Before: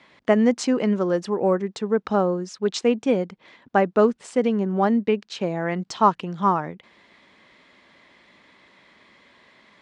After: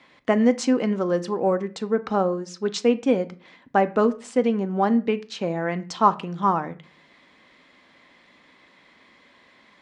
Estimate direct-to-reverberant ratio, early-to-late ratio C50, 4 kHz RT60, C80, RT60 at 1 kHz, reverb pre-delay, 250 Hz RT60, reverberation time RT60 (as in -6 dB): 10.0 dB, 19.0 dB, 0.30 s, 22.5 dB, 0.35 s, 3 ms, 0.55 s, 0.40 s